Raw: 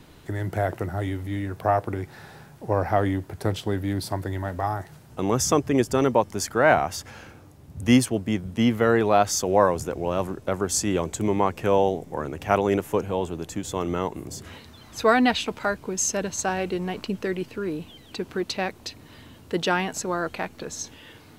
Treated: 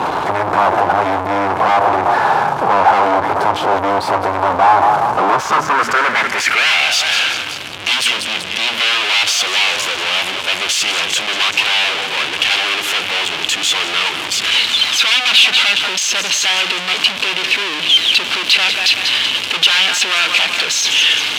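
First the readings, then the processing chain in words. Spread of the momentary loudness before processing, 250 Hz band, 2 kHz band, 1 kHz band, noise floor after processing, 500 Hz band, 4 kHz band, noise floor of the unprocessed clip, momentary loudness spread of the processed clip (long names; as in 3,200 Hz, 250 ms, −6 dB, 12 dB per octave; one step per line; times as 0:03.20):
15 LU, −3.5 dB, +17.0 dB, +12.5 dB, −23 dBFS, +2.5 dB, +24.5 dB, −49 dBFS, 6 LU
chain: hum removal 77.74 Hz, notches 4
on a send: feedback echo with a high-pass in the loop 190 ms, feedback 42%, high-pass 610 Hz, level −17.5 dB
on the sum: power curve on the samples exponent 0.5
sine wavefolder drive 13 dB, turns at −3.5 dBFS
notch filter 1,900 Hz, Q 12
leveller curve on the samples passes 2
band-pass filter sweep 920 Hz → 3,000 Hz, 0:05.28–0:06.93
level −1.5 dB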